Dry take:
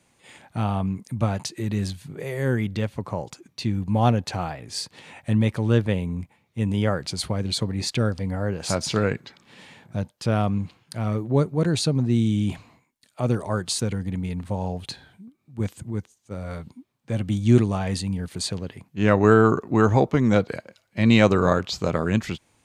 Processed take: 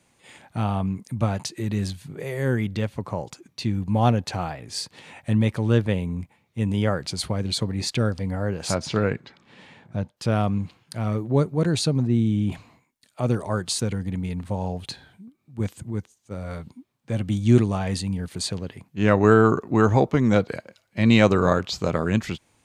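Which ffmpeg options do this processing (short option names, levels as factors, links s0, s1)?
-filter_complex "[0:a]asettb=1/sr,asplit=3[s0][s1][s2];[s0]atrim=end=8.744[s3];[s1]atrim=start=8.74:end=10.17,asetpts=PTS-STARTPTS,afade=t=in:d=0.004:c=qsin,afade=t=out:st=1.426:d=0.004:c=qsin,aemphasis=mode=reproduction:type=50kf[s4];[s2]atrim=start=10.166[s5];[s3][s4]acrossfade=d=0.004:c1=hsin:c2=qsin[s6];[s6][s5]acrossfade=d=0.004:c1=qsin:c2=hsin,asettb=1/sr,asplit=3[s7][s8][s9];[s7]atrim=end=12.074[s10];[s8]atrim=start=12.07:end=12.52,asetpts=PTS-STARTPTS,afade=t=in:d=0.004:c=qsin,afade=t=out:st=0.446:d=0.004:c=qsin,equalizer=f=6900:w=0.41:g=-10[s11];[s9]atrim=start=12.516[s12];[s10][s11]acrossfade=d=0.004:c1=hsin:c2=qsin[s13];[s13][s12]acrossfade=d=0.004:c1=qsin:c2=hsin"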